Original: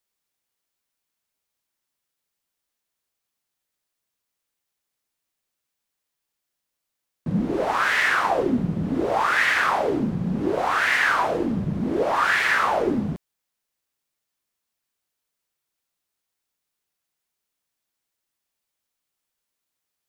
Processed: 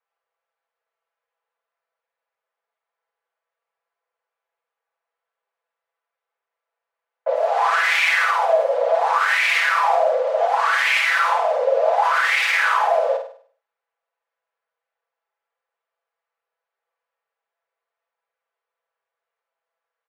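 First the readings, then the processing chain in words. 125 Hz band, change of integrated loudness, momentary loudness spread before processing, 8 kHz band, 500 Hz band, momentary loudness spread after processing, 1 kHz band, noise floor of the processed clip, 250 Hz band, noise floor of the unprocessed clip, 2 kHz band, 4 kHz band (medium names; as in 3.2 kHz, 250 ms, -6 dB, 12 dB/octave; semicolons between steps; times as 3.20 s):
under -40 dB, +4.0 dB, 7 LU, +3.5 dB, +6.5 dB, 4 LU, +5.0 dB, under -85 dBFS, under -40 dB, -82 dBFS, +3.5 dB, +5.5 dB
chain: level-controlled noise filter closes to 1.2 kHz, open at -18 dBFS; frequency shift +390 Hz; peak limiter -18.5 dBFS, peak gain reduction 9.5 dB; comb 6 ms, depth 80%; flutter echo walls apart 8.6 m, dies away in 0.48 s; trim +5 dB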